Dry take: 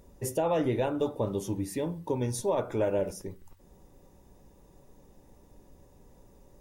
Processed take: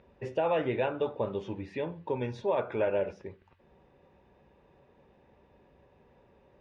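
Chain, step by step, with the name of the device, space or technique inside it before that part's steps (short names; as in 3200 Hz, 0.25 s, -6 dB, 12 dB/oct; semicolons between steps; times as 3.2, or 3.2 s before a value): guitar cabinet (speaker cabinet 92–3500 Hz, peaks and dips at 110 Hz -6 dB, 180 Hz -6 dB, 290 Hz -8 dB, 1600 Hz +5 dB, 2500 Hz +6 dB)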